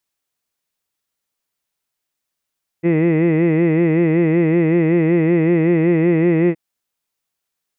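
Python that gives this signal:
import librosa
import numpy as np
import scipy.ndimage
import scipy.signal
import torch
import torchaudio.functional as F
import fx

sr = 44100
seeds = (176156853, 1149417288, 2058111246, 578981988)

y = fx.vowel(sr, seeds[0], length_s=3.72, word='hid', hz=163.0, glide_st=0.5, vibrato_hz=5.3, vibrato_st=0.95)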